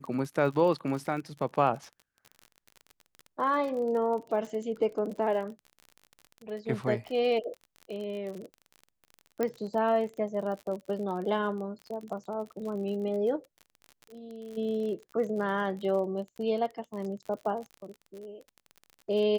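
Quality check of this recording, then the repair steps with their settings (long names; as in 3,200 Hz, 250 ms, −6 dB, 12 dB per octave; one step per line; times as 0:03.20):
surface crackle 42 per second −37 dBFS
0:09.43: click −17 dBFS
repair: click removal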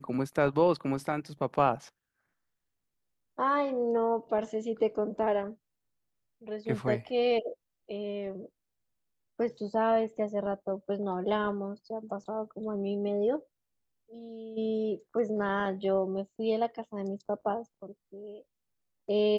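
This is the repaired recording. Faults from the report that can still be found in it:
none of them is left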